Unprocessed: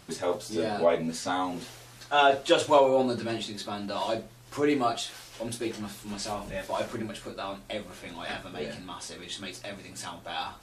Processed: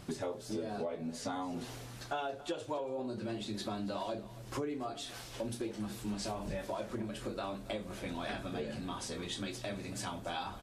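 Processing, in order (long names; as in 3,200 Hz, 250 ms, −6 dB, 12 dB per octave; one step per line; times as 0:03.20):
tilt shelving filter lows +4 dB, about 650 Hz
downward compressor 16 to 1, threshold −36 dBFS, peak gain reduction 22 dB
single-tap delay 279 ms −17.5 dB
level +1.5 dB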